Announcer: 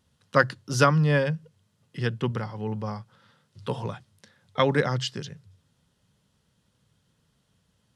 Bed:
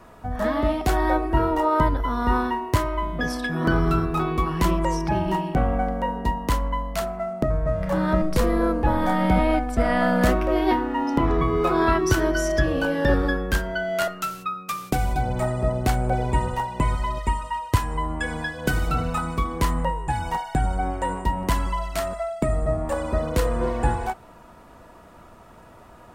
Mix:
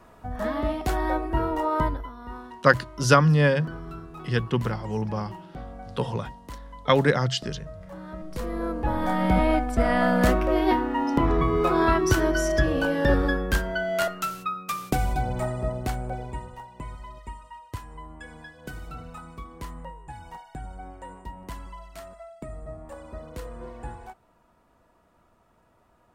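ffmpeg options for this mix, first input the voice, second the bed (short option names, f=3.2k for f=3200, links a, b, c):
-filter_complex "[0:a]adelay=2300,volume=2.5dB[a];[1:a]volume=12dB,afade=t=out:st=1.86:d=0.26:silence=0.223872,afade=t=in:st=8.18:d=1.28:silence=0.149624,afade=t=out:st=14.89:d=1.6:silence=0.188365[b];[a][b]amix=inputs=2:normalize=0"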